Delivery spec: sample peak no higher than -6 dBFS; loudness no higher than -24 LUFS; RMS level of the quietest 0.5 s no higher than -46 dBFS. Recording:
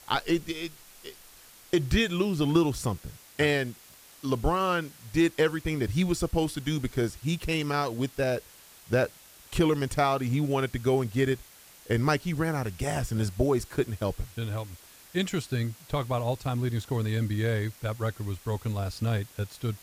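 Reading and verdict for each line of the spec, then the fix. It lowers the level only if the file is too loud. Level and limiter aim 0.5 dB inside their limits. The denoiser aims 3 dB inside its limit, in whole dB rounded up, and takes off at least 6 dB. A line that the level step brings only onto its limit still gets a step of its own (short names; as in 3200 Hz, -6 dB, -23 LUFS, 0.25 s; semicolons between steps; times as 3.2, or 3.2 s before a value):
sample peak -10.0 dBFS: OK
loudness -29.0 LUFS: OK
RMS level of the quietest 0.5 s -53 dBFS: OK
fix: none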